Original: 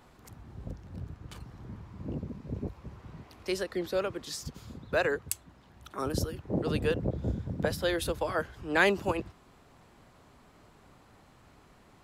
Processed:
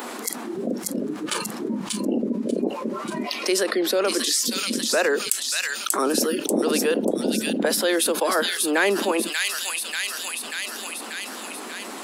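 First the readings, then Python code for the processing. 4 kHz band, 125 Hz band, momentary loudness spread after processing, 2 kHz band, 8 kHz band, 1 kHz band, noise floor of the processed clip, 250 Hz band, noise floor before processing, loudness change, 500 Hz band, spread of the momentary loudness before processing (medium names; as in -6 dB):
+16.0 dB, -5.0 dB, 9 LU, +8.5 dB, +19.5 dB, +9.0 dB, -35 dBFS, +11.5 dB, -59 dBFS, +8.5 dB, +9.0 dB, 18 LU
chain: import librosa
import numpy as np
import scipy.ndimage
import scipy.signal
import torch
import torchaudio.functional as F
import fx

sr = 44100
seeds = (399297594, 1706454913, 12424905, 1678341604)

p1 = fx.noise_reduce_blind(x, sr, reduce_db=18)
p2 = scipy.signal.sosfilt(scipy.signal.cheby1(5, 1.0, 220.0, 'highpass', fs=sr, output='sos'), p1)
p3 = fx.peak_eq(p2, sr, hz=9500.0, db=7.5, octaves=0.78)
p4 = fx.rider(p3, sr, range_db=5, speed_s=0.5)
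p5 = p3 + (p4 * librosa.db_to_amplitude(-2.0))
p6 = 10.0 ** (-7.5 / 20.0) * np.tanh(p5 / 10.0 ** (-7.5 / 20.0))
p7 = fx.echo_wet_highpass(p6, sr, ms=588, feedback_pct=37, hz=3500.0, wet_db=-4.0)
y = fx.env_flatten(p7, sr, amount_pct=70)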